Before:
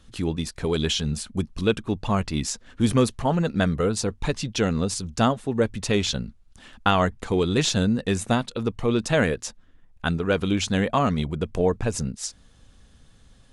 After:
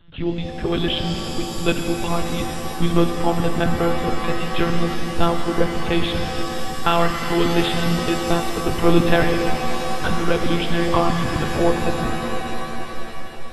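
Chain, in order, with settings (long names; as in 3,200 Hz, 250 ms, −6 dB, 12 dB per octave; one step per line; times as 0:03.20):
0:08.69–0:09.15: leveller curve on the samples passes 2
one-pitch LPC vocoder at 8 kHz 170 Hz
reverb with rising layers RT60 3.6 s, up +7 semitones, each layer −2 dB, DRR 4 dB
level +2 dB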